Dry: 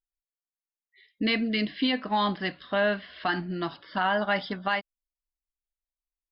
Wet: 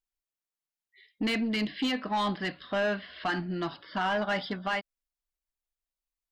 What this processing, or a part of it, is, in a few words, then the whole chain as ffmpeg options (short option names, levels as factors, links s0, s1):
saturation between pre-emphasis and de-emphasis: -af "highshelf=f=4200:g=9,asoftclip=type=tanh:threshold=0.0794,highshelf=f=4200:g=-9"